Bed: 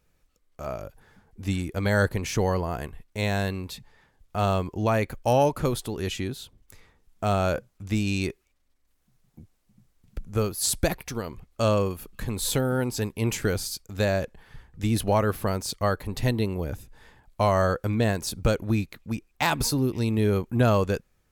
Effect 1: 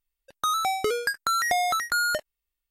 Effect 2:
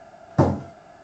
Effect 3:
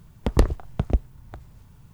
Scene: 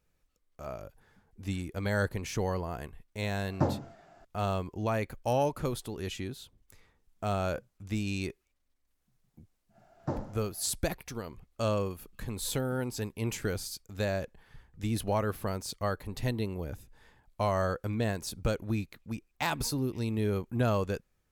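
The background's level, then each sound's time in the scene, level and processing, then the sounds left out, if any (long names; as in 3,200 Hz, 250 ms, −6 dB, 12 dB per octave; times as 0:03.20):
bed −7 dB
0:03.22: mix in 2 −10 dB
0:09.69: mix in 2 −16 dB, fades 0.10 s + feedback echo with a high-pass in the loop 64 ms, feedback 55%, level −9 dB
not used: 1, 3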